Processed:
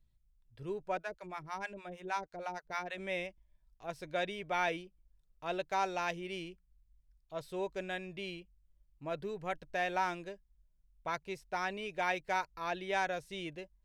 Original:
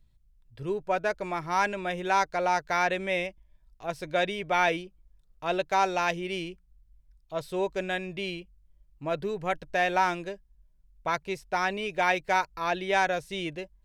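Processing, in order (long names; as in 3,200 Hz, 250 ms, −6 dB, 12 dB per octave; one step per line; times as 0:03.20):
0:00.97–0:02.98: two-band tremolo in antiphase 6.4 Hz, depth 100%, crossover 620 Hz
level −8.5 dB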